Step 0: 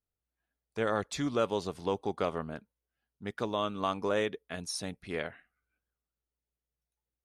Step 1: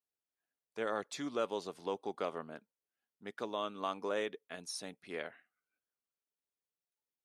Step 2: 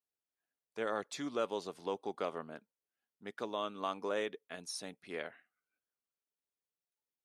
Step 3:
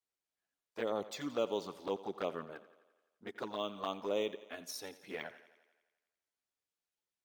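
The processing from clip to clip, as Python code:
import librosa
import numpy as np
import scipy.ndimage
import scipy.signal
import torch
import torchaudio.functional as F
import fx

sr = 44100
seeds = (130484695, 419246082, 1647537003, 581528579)

y1 = scipy.signal.sosfilt(scipy.signal.butter(2, 250.0, 'highpass', fs=sr, output='sos'), x)
y1 = F.gain(torch.from_numpy(y1), -5.5).numpy()
y2 = y1
y3 = fx.env_flanger(y2, sr, rest_ms=10.8, full_db=-32.5)
y3 = fx.echo_thinned(y3, sr, ms=86, feedback_pct=64, hz=170.0, wet_db=-16.5)
y3 = np.interp(np.arange(len(y3)), np.arange(len(y3))[::2], y3[::2])
y3 = F.gain(torch.from_numpy(y3), 3.0).numpy()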